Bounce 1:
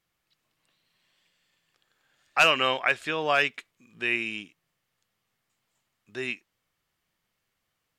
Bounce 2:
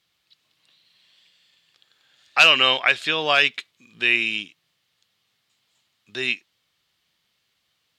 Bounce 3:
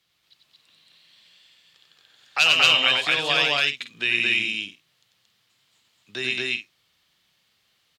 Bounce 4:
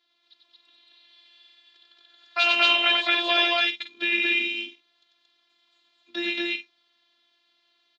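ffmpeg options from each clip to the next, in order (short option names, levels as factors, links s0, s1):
-filter_complex "[0:a]equalizer=f=3800:w=1.1:g=12.5,asplit=2[s0][s1];[s1]alimiter=limit=0.376:level=0:latency=1,volume=0.841[s2];[s0][s2]amix=inputs=2:normalize=0,highpass=56,volume=0.708"
-filter_complex "[0:a]acrossover=split=140|3000[s0][s1][s2];[s1]acompressor=threshold=0.0251:ratio=2[s3];[s0][s3][s2]amix=inputs=3:normalize=0,asplit=2[s4][s5];[s5]aecho=0:1:93.29|227.4|277:0.631|1|0.316[s6];[s4][s6]amix=inputs=2:normalize=0"
-af "aexciter=amount=1.4:drive=7.7:freq=2800,afftfilt=real='hypot(re,im)*cos(PI*b)':imag='0':win_size=512:overlap=0.75,highpass=f=160:w=0.5412,highpass=f=160:w=1.3066,equalizer=f=190:t=q:w=4:g=5,equalizer=f=560:t=q:w=4:g=4,equalizer=f=2900:t=q:w=4:g=-9,lowpass=f=4100:w=0.5412,lowpass=f=4100:w=1.3066,volume=1.5"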